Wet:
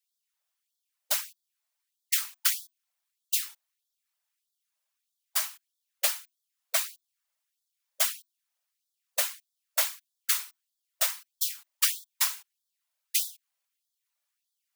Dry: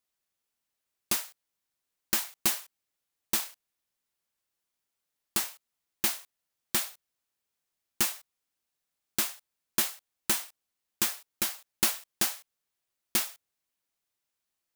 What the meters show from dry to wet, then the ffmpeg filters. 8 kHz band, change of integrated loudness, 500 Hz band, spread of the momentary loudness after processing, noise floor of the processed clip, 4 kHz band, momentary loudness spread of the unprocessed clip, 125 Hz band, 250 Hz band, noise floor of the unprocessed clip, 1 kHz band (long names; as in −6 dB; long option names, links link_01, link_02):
+1.5 dB, +1.5 dB, 0.0 dB, 11 LU, −84 dBFS, +1.5 dB, 10 LU, below −40 dB, below −40 dB, −85 dBFS, −1.0 dB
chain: -af "afftfilt=real='hypot(re,im)*cos(2*PI*random(0))':imag='hypot(re,im)*sin(2*PI*random(1))':win_size=512:overlap=0.75,afreqshift=310,afftfilt=real='re*gte(b*sr/1024,490*pow(3300/490,0.5+0.5*sin(2*PI*1.6*pts/sr)))':imag='im*gte(b*sr/1024,490*pow(3300/490,0.5+0.5*sin(2*PI*1.6*pts/sr)))':win_size=1024:overlap=0.75,volume=7.5dB"